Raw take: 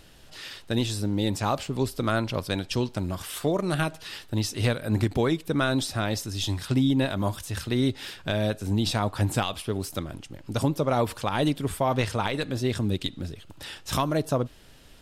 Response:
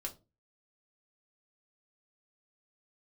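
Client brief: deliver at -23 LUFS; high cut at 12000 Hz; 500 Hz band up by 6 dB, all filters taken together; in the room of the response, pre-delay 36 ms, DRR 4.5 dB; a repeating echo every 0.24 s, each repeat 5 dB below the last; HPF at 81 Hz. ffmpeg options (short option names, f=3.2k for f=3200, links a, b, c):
-filter_complex "[0:a]highpass=81,lowpass=12k,equalizer=f=500:t=o:g=7.5,aecho=1:1:240|480|720|960|1200|1440|1680:0.562|0.315|0.176|0.0988|0.0553|0.031|0.0173,asplit=2[a][b];[1:a]atrim=start_sample=2205,adelay=36[c];[b][c]afir=irnorm=-1:irlink=0,volume=-3.5dB[d];[a][d]amix=inputs=2:normalize=0,volume=-1dB"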